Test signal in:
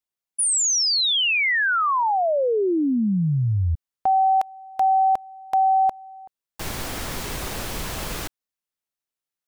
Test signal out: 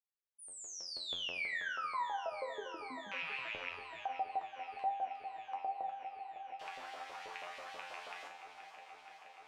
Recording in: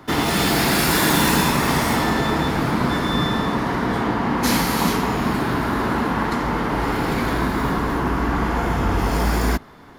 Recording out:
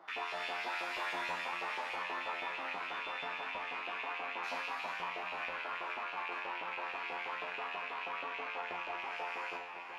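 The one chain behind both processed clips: rattle on loud lows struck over -27 dBFS, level -10 dBFS; LFO high-pass saw up 6.2 Hz 530–3200 Hz; flange 1.2 Hz, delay 5.7 ms, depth 6.7 ms, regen +33%; tape spacing loss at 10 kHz 21 dB; feedback comb 88 Hz, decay 0.49 s, harmonics all, mix 90%; echo whose repeats swap between lows and highs 238 ms, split 920 Hz, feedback 86%, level -11 dB; compression 1.5:1, threshold -54 dBFS; trim +3.5 dB

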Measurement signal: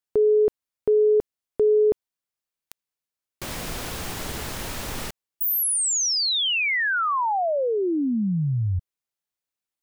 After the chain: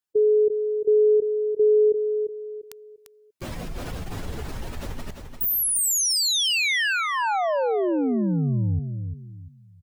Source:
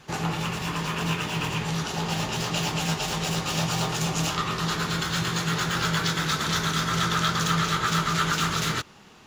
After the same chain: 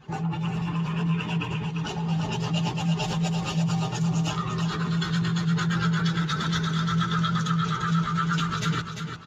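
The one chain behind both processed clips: spectral contrast enhancement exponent 1.8; dynamic bell 1.2 kHz, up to -5 dB, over -43 dBFS, Q 3.8; on a send: feedback delay 346 ms, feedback 31%, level -7 dB

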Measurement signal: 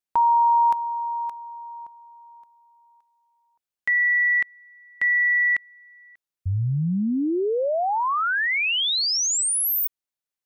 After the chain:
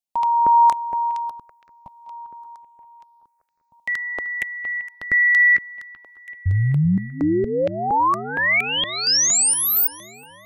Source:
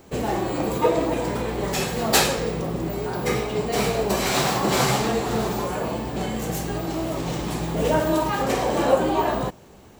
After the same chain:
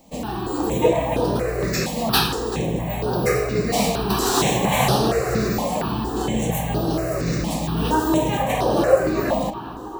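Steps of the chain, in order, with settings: level rider gain up to 6 dB; on a send: filtered feedback delay 384 ms, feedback 69%, low-pass 3.4 kHz, level -13 dB; on the sum: stepped phaser 4.3 Hz 390–7300 Hz

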